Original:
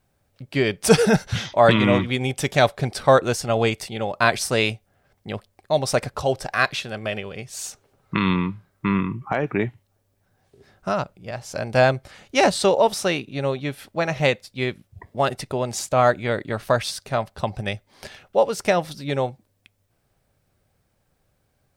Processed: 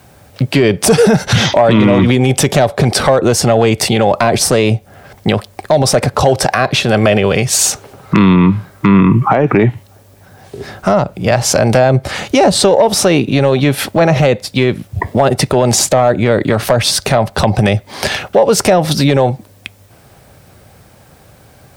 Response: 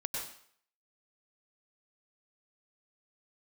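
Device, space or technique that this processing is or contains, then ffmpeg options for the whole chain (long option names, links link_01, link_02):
mastering chain: -filter_complex "[0:a]highpass=58,equalizer=frequency=830:width_type=o:width=0.77:gain=2,acrossover=split=87|760[link_01][link_02][link_03];[link_01]acompressor=threshold=-49dB:ratio=4[link_04];[link_02]acompressor=threshold=-20dB:ratio=4[link_05];[link_03]acompressor=threshold=-33dB:ratio=4[link_06];[link_04][link_05][link_06]amix=inputs=3:normalize=0,acompressor=threshold=-32dB:ratio=1.5,asoftclip=type=tanh:threshold=-16.5dB,asoftclip=type=hard:threshold=-20dB,alimiter=level_in=26.5dB:limit=-1dB:release=50:level=0:latency=1,volume=-1dB"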